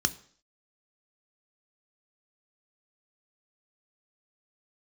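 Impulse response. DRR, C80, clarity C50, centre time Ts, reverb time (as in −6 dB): 10.0 dB, 21.5 dB, 18.5 dB, 4 ms, 0.55 s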